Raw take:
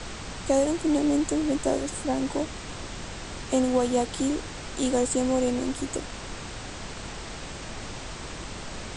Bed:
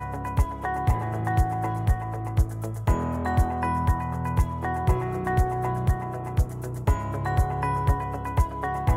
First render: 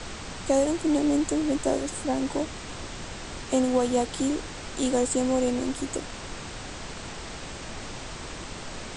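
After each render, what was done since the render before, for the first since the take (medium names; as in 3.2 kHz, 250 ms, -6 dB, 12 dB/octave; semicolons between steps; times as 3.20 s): de-hum 50 Hz, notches 4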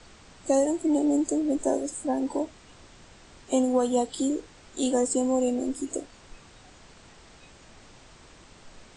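noise print and reduce 14 dB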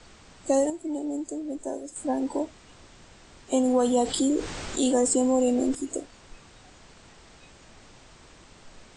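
0.70–1.96 s: gain -7.5 dB; 3.65–5.75 s: level flattener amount 50%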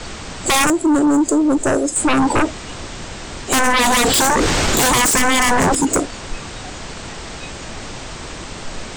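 sine folder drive 17 dB, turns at -11 dBFS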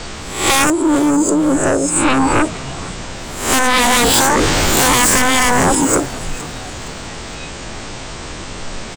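reverse spectral sustain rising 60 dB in 0.58 s; frequency-shifting echo 465 ms, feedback 45%, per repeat -130 Hz, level -17 dB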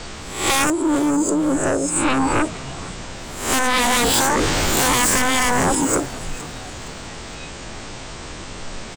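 trim -5 dB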